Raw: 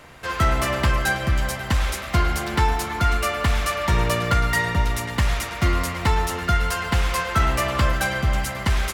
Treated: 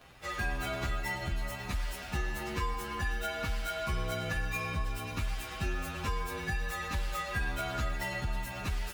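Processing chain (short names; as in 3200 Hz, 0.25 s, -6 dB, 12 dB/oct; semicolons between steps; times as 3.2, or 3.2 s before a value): inharmonic rescaling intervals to 112%; compressor 2:1, threshold -27 dBFS, peak gain reduction 6.5 dB; gain -6.5 dB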